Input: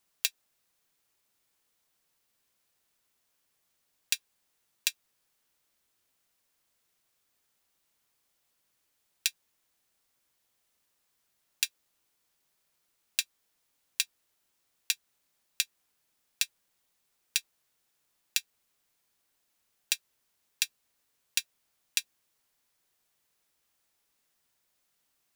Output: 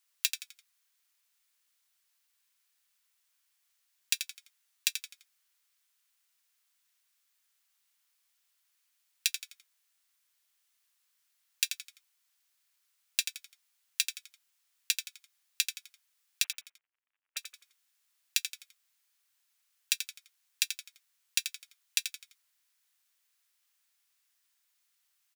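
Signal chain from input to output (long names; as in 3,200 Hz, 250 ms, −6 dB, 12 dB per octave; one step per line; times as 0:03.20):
0:16.44–0:17.37: variable-slope delta modulation 16 kbit/s
high-pass filter 1,400 Hz 12 dB per octave
on a send: echo with shifted repeats 85 ms, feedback 37%, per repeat −65 Hz, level −8.5 dB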